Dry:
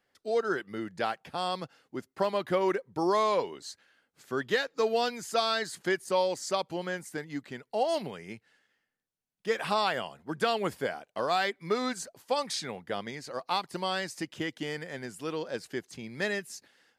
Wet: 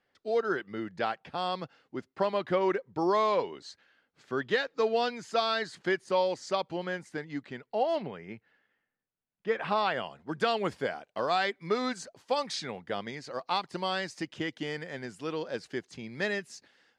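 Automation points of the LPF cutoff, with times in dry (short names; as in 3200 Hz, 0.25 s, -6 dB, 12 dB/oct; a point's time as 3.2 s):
7.45 s 4500 Hz
8.16 s 2400 Hz
9.6 s 2400 Hz
10.3 s 6000 Hz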